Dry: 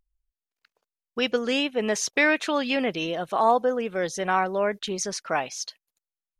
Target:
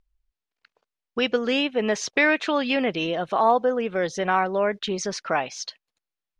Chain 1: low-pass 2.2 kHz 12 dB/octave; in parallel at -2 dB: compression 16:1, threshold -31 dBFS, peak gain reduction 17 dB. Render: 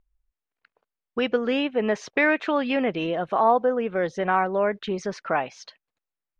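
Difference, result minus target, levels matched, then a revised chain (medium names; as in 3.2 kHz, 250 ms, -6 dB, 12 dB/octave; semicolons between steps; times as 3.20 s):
4 kHz band -5.5 dB
low-pass 4.6 kHz 12 dB/octave; in parallel at -2 dB: compression 16:1, threshold -31 dBFS, peak gain reduction 17.5 dB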